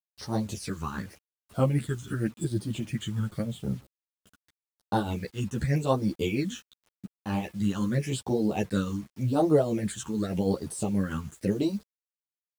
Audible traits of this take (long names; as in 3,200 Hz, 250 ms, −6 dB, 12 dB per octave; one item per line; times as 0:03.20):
phaser sweep stages 8, 0.87 Hz, lowest notch 620–2,400 Hz
tremolo triangle 6.3 Hz, depth 65%
a quantiser's noise floor 10 bits, dither none
a shimmering, thickened sound